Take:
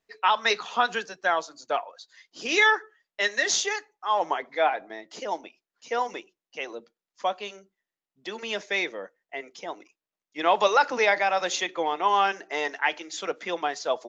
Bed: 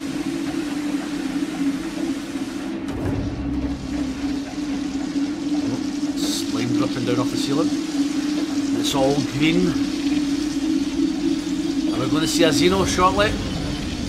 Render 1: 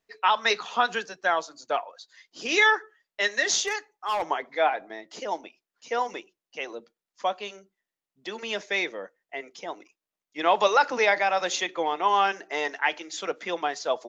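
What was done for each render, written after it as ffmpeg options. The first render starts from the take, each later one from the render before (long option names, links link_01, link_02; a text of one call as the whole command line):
ffmpeg -i in.wav -filter_complex "[0:a]asettb=1/sr,asplit=3[link_01][link_02][link_03];[link_01]atrim=end=3.664[link_04];[link_02]atrim=start=3.66:end=4.23,asetpts=PTS-STARTPTS,afade=type=in:duration=0.004:curve=qsin,afade=type=out:start_time=0.566:duration=0.004:curve=qsin,asoftclip=type=hard:threshold=-22.5dB[link_05];[link_03]atrim=start=4.226[link_06];[link_04][link_05]acrossfade=duration=0.004:curve1=hsin:curve2=qsin[link_07];[link_07][link_06]acrossfade=duration=0.004:curve1=qsin:curve2=hsin" out.wav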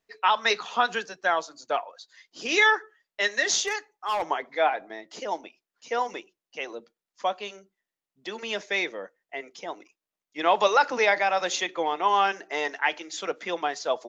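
ffmpeg -i in.wav -af anull out.wav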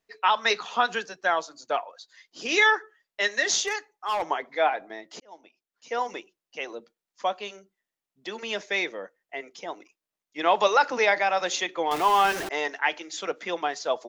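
ffmpeg -i in.wav -filter_complex "[0:a]asettb=1/sr,asplit=3[link_01][link_02][link_03];[link_01]atrim=end=11.914[link_04];[link_02]atrim=start=11.91:end=12.49,asetpts=PTS-STARTPTS,afade=type=in:duration=0.004:curve=qsin,afade=type=out:start_time=0.576:duration=0.004:curve=qsin,aeval=exprs='val(0)+0.5*0.0422*sgn(val(0))':channel_layout=same[link_05];[link_03]atrim=start=12.486[link_06];[link_04][link_05]acrossfade=duration=0.004:curve1=hsin:curve2=qsin[link_07];[link_07][link_06]acrossfade=duration=0.004:curve1=qsin:curve2=hsin,asplit=2[link_08][link_09];[link_08]atrim=end=5.2,asetpts=PTS-STARTPTS,afade=type=out:start_time=5.196:duration=0.004:curve=hsin[link_10];[link_09]atrim=start=5.2,asetpts=PTS-STARTPTS,afade=type=in:duration=0.91[link_11];[link_10][link_11]concat=n=2:v=0:a=1" out.wav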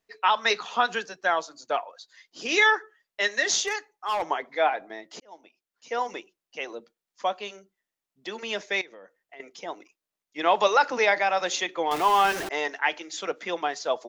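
ffmpeg -i in.wav -filter_complex "[0:a]asettb=1/sr,asplit=3[link_01][link_02][link_03];[link_01]atrim=end=8.814[link_04];[link_02]atrim=start=8.81:end=9.4,asetpts=PTS-STARTPTS,afade=type=in:duration=0.004:curve=qsin,afade=type=out:start_time=0.586:duration=0.004:curve=qsin,acompressor=threshold=-44dB:ratio=5:attack=3.2:release=140:knee=1:detection=peak[link_05];[link_03]atrim=start=9.396[link_06];[link_04][link_05]acrossfade=duration=0.004:curve1=hsin:curve2=qsin[link_07];[link_07][link_06]acrossfade=duration=0.004:curve1=qsin:curve2=hsin" out.wav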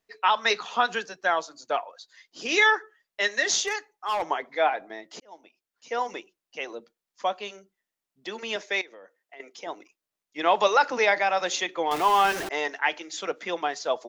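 ffmpeg -i in.wav -filter_complex "[0:a]asettb=1/sr,asplit=3[link_01][link_02][link_03];[link_01]atrim=end=8.564[link_04];[link_02]atrim=start=8.56:end=9.67,asetpts=PTS-STARTPTS,afade=type=in:duration=0.004:curve=qsin,afade=type=out:start_time=1.106:duration=0.004:curve=qsin,highpass=250[link_05];[link_03]atrim=start=9.666[link_06];[link_04][link_05]acrossfade=duration=0.004:curve1=hsin:curve2=qsin[link_07];[link_07][link_06]acrossfade=duration=0.004:curve1=qsin:curve2=hsin" out.wav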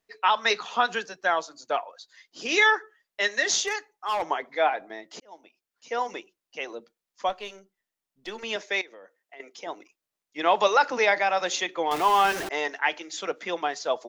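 ffmpeg -i in.wav -filter_complex "[0:a]asettb=1/sr,asplit=3[link_01][link_02][link_03];[link_01]atrim=end=7.294[link_04];[link_02]atrim=start=7.29:end=8.44,asetpts=PTS-STARTPTS,afade=type=in:duration=0.004:curve=qsin,afade=type=out:start_time=1.146:duration=0.004:curve=qsin,aeval=exprs='if(lt(val(0),0),0.708*val(0),val(0))':channel_layout=same[link_05];[link_03]atrim=start=8.436[link_06];[link_04][link_05]acrossfade=duration=0.004:curve1=hsin:curve2=qsin[link_07];[link_07][link_06]acrossfade=duration=0.004:curve1=qsin:curve2=hsin" out.wav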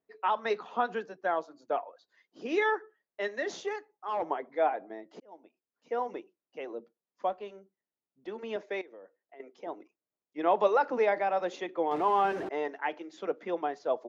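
ffmpeg -i in.wav -af "bandpass=frequency=320:width_type=q:width=0.66:csg=0" out.wav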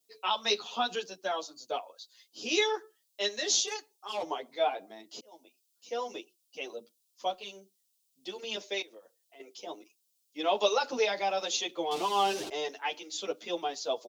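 ffmpeg -i in.wav -filter_complex "[0:a]aexciter=amount=11.5:drive=5.1:freq=2800,asplit=2[link_01][link_02];[link_02]adelay=9,afreqshift=1.1[link_03];[link_01][link_03]amix=inputs=2:normalize=1" out.wav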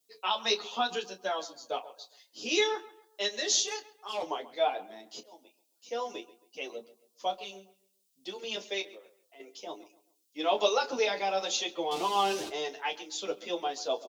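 ffmpeg -i in.wav -filter_complex "[0:a]asplit=2[link_01][link_02];[link_02]adelay=26,volume=-11dB[link_03];[link_01][link_03]amix=inputs=2:normalize=0,asplit=2[link_04][link_05];[link_05]adelay=135,lowpass=frequency=2700:poles=1,volume=-17.5dB,asplit=2[link_06][link_07];[link_07]adelay=135,lowpass=frequency=2700:poles=1,volume=0.36,asplit=2[link_08][link_09];[link_09]adelay=135,lowpass=frequency=2700:poles=1,volume=0.36[link_10];[link_04][link_06][link_08][link_10]amix=inputs=4:normalize=0" out.wav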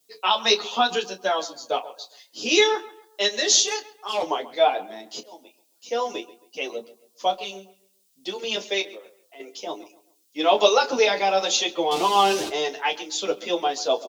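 ffmpeg -i in.wav -af "volume=9dB" out.wav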